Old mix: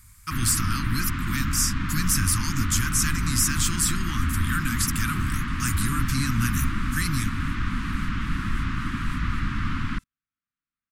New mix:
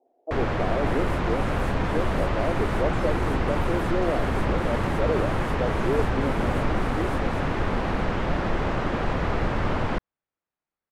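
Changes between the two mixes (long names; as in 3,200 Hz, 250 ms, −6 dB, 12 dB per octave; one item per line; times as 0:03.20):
speech: add Chebyshev band-pass filter 260–720 Hz, order 4
second sound: entry −2.00 s
master: remove Chebyshev band-stop filter 270–1,200 Hz, order 3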